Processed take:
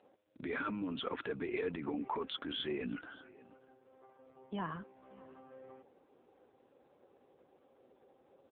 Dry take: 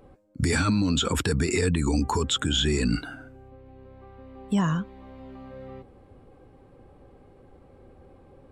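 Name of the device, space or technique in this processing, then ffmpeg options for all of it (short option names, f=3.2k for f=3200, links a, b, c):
satellite phone: -filter_complex "[0:a]asettb=1/sr,asplit=3[a][b][c];[a]atrim=end=0.454[d];[b]atrim=start=0.45:end=1.13,asetpts=PTS-STARTPTS,afade=t=in:d=0.004:c=qsin,afade=t=out:st=0.676:d=0.004:c=qsin,lowpass=5.7k[e];[c]atrim=start=1.126[f];[d][e]acrossfade=d=0.004:c1=hsin:c2=qsin[g];[g][f]acrossfade=d=0.004:c1=qsin:c2=hsin,highpass=330,lowpass=3.1k,aecho=1:1:581:0.0794,volume=-7.5dB" -ar 8000 -c:a libopencore_amrnb -b:a 5900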